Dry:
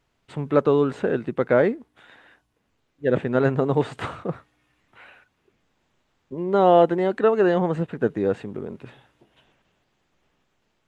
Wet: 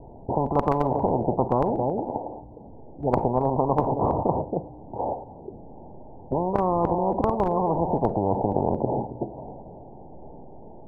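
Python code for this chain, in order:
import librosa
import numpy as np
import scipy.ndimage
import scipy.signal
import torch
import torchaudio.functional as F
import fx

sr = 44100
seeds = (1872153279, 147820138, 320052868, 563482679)

p1 = scipy.signal.sosfilt(scipy.signal.butter(16, 900.0, 'lowpass', fs=sr, output='sos'), x)
p2 = fx.low_shelf(p1, sr, hz=500.0, db=-4.5)
p3 = fx.level_steps(p2, sr, step_db=20)
p4 = p2 + (p3 * librosa.db_to_amplitude(2.0))
p5 = p4 + 10.0 ** (-22.5 / 20.0) * np.pad(p4, (int(273 * sr / 1000.0), 0))[:len(p4)]
p6 = fx.rev_schroeder(p5, sr, rt60_s=0.31, comb_ms=32, drr_db=19.0)
p7 = fx.spectral_comp(p6, sr, ratio=10.0)
y = p7 * librosa.db_to_amplitude(-1.5)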